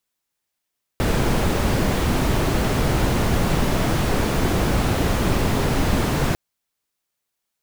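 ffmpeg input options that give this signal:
-f lavfi -i "anoisesrc=c=brown:a=0.525:d=5.35:r=44100:seed=1"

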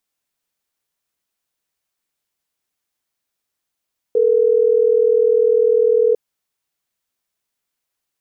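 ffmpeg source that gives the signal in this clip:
-f lavfi -i "aevalsrc='0.2*(sin(2*PI*440*t)+sin(2*PI*480*t))*clip(min(mod(t,6),2-mod(t,6))/0.005,0,1)':d=3.12:s=44100"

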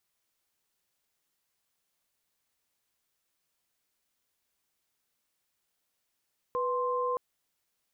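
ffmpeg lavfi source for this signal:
-f lavfi -i "aevalsrc='0.0316*(sin(2*PI*493.88*t)+sin(2*PI*1046.5*t))':d=0.62:s=44100"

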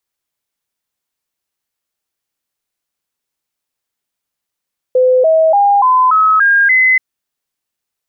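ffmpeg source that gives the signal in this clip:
-f lavfi -i "aevalsrc='0.473*clip(min(mod(t,0.29),0.29-mod(t,0.29))/0.005,0,1)*sin(2*PI*509*pow(2,floor(t/0.29)/3)*mod(t,0.29))':d=2.03:s=44100"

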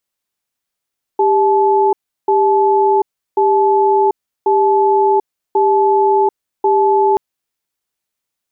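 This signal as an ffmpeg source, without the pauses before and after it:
-f lavfi -i "aevalsrc='0.251*(sin(2*PI*396*t)+sin(2*PI*864*t))*clip(min(mod(t,1.09),0.74-mod(t,1.09))/0.005,0,1)':d=5.98:s=44100"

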